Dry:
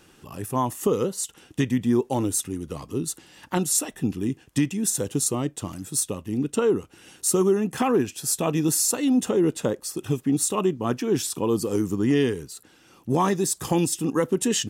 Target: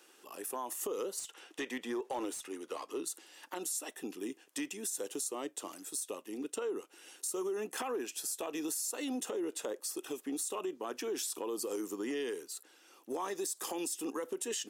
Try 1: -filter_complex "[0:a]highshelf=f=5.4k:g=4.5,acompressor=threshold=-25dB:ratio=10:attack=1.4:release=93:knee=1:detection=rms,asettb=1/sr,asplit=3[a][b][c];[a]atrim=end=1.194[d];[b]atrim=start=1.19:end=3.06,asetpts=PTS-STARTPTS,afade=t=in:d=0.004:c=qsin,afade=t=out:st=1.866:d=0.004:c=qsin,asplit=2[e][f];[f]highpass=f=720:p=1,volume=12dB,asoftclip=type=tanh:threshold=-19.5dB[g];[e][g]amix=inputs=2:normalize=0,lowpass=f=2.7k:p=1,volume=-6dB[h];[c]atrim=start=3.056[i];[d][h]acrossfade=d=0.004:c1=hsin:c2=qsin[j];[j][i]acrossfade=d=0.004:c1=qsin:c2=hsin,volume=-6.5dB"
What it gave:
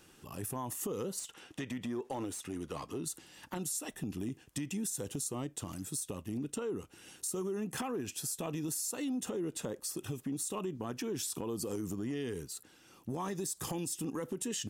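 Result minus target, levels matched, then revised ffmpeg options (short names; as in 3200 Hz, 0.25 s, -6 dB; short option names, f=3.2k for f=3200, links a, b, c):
250 Hz band +2.5 dB
-filter_complex "[0:a]highpass=f=340:w=0.5412,highpass=f=340:w=1.3066,highshelf=f=5.4k:g=4.5,acompressor=threshold=-25dB:ratio=10:attack=1.4:release=93:knee=1:detection=rms,asettb=1/sr,asplit=3[a][b][c];[a]atrim=end=1.194[d];[b]atrim=start=1.19:end=3.06,asetpts=PTS-STARTPTS,afade=t=in:d=0.004:c=qsin,afade=t=out:st=1.866:d=0.004:c=qsin,asplit=2[e][f];[f]highpass=f=720:p=1,volume=12dB,asoftclip=type=tanh:threshold=-19.5dB[g];[e][g]amix=inputs=2:normalize=0,lowpass=f=2.7k:p=1,volume=-6dB[h];[c]atrim=start=3.056[i];[d][h]acrossfade=d=0.004:c1=hsin:c2=qsin[j];[j][i]acrossfade=d=0.004:c1=qsin:c2=hsin,volume=-6.5dB"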